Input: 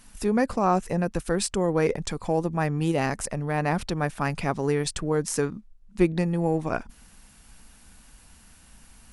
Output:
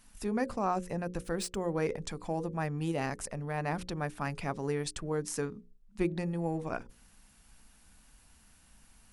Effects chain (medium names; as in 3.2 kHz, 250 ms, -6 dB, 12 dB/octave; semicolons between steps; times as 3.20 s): 1.24–1.78 s: median filter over 3 samples; hum notches 60/120/180/240/300/360/420/480/540 Hz; trim -8 dB